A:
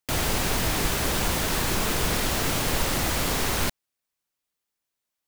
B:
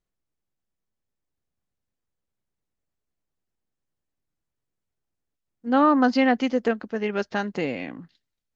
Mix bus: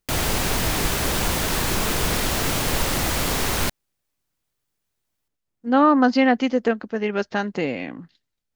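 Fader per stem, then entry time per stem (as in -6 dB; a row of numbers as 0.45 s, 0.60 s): +2.5 dB, +2.5 dB; 0.00 s, 0.00 s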